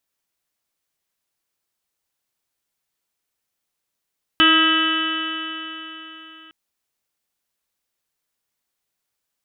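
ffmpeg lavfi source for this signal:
ffmpeg -f lavfi -i "aevalsrc='0.126*pow(10,-3*t/3.82)*sin(2*PI*318.19*t)+0.02*pow(10,-3*t/3.82)*sin(2*PI*637.52*t)+0.0224*pow(10,-3*t/3.82)*sin(2*PI*959.14*t)+0.141*pow(10,-3*t/3.82)*sin(2*PI*1284.15*t)+0.112*pow(10,-3*t/3.82)*sin(2*PI*1613.67*t)+0.0668*pow(10,-3*t/3.82)*sin(2*PI*1948.78*t)+0.0178*pow(10,-3*t/3.82)*sin(2*PI*2290.51*t)+0.1*pow(10,-3*t/3.82)*sin(2*PI*2639.88*t)+0.211*pow(10,-3*t/3.82)*sin(2*PI*2997.87*t)+0.0501*pow(10,-3*t/3.82)*sin(2*PI*3365.4*t)+0.0158*pow(10,-3*t/3.82)*sin(2*PI*3743.35*t)':duration=2.11:sample_rate=44100" out.wav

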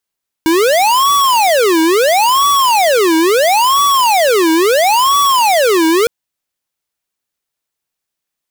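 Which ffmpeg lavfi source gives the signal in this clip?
ffmpeg -f lavfi -i "aevalsrc='0.299*(2*lt(mod((730*t-410/(2*PI*0.74)*sin(2*PI*0.74*t)),1),0.5)-1)':duration=5.61:sample_rate=44100" out.wav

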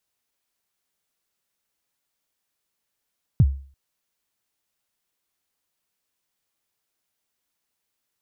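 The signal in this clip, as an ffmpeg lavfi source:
ffmpeg -f lavfi -i "aevalsrc='0.376*pow(10,-3*t/0.43)*sin(2*PI*(160*0.047/log(68/160)*(exp(log(68/160)*min(t,0.047)/0.047)-1)+68*max(t-0.047,0)))':duration=0.34:sample_rate=44100" out.wav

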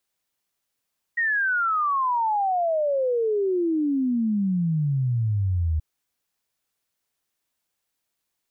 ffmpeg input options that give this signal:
ffmpeg -f lavfi -i "aevalsrc='0.1*clip(min(t,4.63-t)/0.01,0,1)*sin(2*PI*1900*4.63/log(76/1900)*(exp(log(76/1900)*t/4.63)-1))':duration=4.63:sample_rate=44100" out.wav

